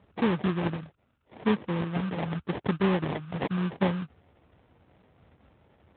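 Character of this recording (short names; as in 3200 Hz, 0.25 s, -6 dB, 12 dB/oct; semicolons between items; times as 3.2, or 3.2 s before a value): phasing stages 2, 0.83 Hz, lowest notch 410–1100 Hz; aliases and images of a low sample rate 1400 Hz, jitter 20%; Speex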